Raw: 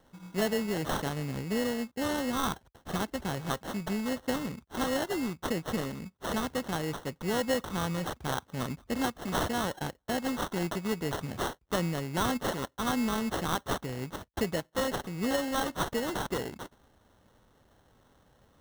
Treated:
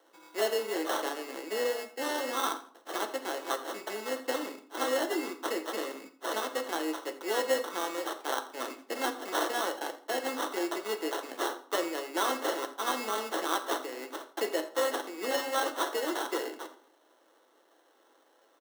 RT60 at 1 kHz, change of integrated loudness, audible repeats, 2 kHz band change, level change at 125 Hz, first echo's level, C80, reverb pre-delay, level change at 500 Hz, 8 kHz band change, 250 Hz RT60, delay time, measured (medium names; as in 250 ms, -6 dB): 0.45 s, -0.5 dB, 2, +1.0 dB, under -30 dB, -17.5 dB, 15.0 dB, 6 ms, +1.5 dB, +1.0 dB, 0.75 s, 84 ms